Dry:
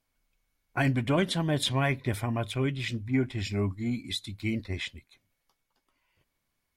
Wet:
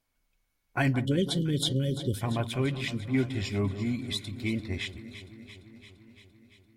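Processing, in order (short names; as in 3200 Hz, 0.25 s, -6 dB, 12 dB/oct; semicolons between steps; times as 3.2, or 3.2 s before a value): spectral delete 1.01–2.21, 580–2900 Hz; echo with dull and thin repeats by turns 0.171 s, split 1400 Hz, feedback 82%, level -12 dB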